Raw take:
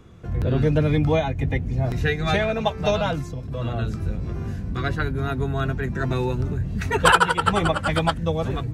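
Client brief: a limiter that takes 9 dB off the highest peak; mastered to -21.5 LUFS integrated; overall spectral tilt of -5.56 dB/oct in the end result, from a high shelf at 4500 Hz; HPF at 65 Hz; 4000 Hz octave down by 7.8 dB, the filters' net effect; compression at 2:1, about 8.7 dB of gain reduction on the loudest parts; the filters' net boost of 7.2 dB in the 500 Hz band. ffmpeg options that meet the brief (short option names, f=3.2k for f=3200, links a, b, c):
-af "highpass=65,equalizer=f=500:t=o:g=9,equalizer=f=4k:t=o:g=-9,highshelf=f=4.5k:g=-4.5,acompressor=threshold=-24dB:ratio=2,volume=6dB,alimiter=limit=-11.5dB:level=0:latency=1"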